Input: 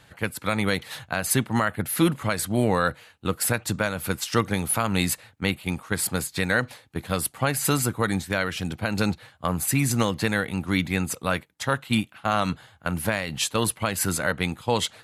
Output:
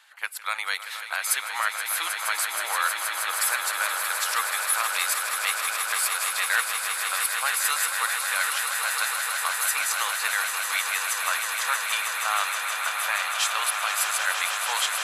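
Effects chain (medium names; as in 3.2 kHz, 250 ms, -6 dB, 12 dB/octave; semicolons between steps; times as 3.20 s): high-pass 930 Hz 24 dB/octave; on a send: echo with a slow build-up 158 ms, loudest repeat 8, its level -9 dB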